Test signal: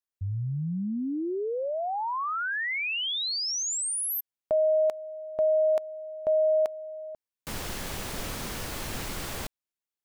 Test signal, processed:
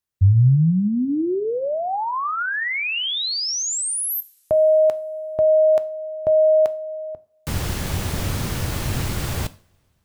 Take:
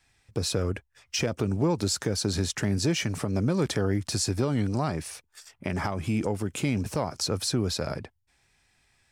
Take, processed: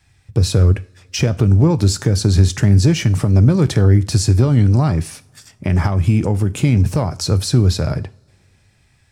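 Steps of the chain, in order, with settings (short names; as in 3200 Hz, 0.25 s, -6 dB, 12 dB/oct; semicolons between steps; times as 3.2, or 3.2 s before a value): bell 96 Hz +13.5 dB 1.8 oct; two-slope reverb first 0.39 s, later 3.1 s, from -28 dB, DRR 13 dB; gain +5.5 dB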